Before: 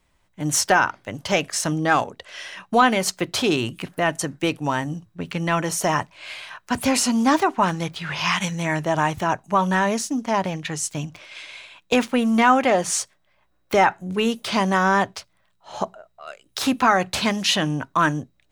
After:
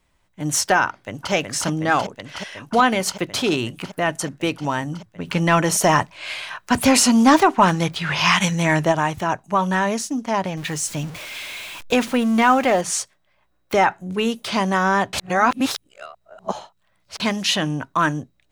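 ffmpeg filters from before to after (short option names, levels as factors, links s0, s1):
-filter_complex "[0:a]asplit=2[s0][s1];[s1]afade=t=in:st=0.86:d=0.01,afade=t=out:st=1.32:d=0.01,aecho=0:1:370|740|1110|1480|1850|2220|2590|2960|3330|3700|4070|4440:0.668344|0.568092|0.482878|0.410447|0.34888|0.296548|0.252066|0.214256|0.182117|0.1548|0.13158|0.111843[s2];[s0][s2]amix=inputs=2:normalize=0,asplit=3[s3][s4][s5];[s3]afade=t=out:st=5.26:d=0.02[s6];[s4]acontrast=43,afade=t=in:st=5.26:d=0.02,afade=t=out:st=8.91:d=0.02[s7];[s5]afade=t=in:st=8.91:d=0.02[s8];[s6][s7][s8]amix=inputs=3:normalize=0,asettb=1/sr,asplit=3[s9][s10][s11];[s9]atrim=end=10.574[s12];[s10]atrim=start=10.57:end=12.81,asetpts=PTS-STARTPTS,afade=t=in:d=0.004:c=qsin,afade=t=out:st=2.236:d=0.004:c=qsin,aeval=exprs='val(0)+0.5*0.0266*sgn(val(0))':c=same[s13];[s11]atrim=start=12.806[s14];[s12][s13]acrossfade=d=0.004:c1=hsin:c2=qsin[s15];[s15][s14]acrossfade=d=0.004:c1=qsin:c2=hsin,asplit=3[s16][s17][s18];[s16]atrim=end=15.132[s19];[s17]atrim=start=15.128:end=17.202,asetpts=PTS-STARTPTS,areverse[s20];[s18]atrim=start=17.198[s21];[s19][s20]acrossfade=d=0.004:c1=hsin:c2=hsin[s22];[s22][s21]acrossfade=d=0.004:c1=hsin:c2=hsin"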